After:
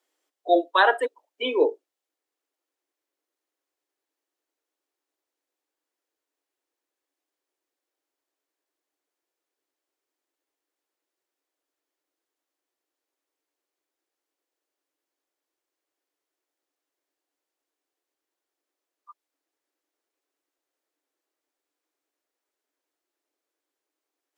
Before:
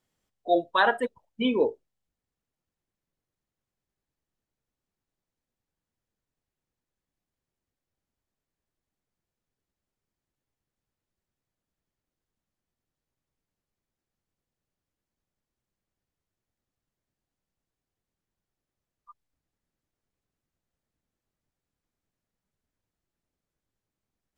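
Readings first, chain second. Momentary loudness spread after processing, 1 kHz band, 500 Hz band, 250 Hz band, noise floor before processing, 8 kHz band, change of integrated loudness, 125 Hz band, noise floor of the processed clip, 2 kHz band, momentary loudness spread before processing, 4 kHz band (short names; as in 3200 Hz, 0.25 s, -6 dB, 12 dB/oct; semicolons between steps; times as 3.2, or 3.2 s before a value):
12 LU, +3.5 dB, +3.5 dB, -1.5 dB, under -85 dBFS, n/a, +3.0 dB, under -20 dB, under -85 dBFS, +3.5 dB, 10 LU, +3.5 dB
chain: steep high-pass 280 Hz 96 dB/oct; gain +3.5 dB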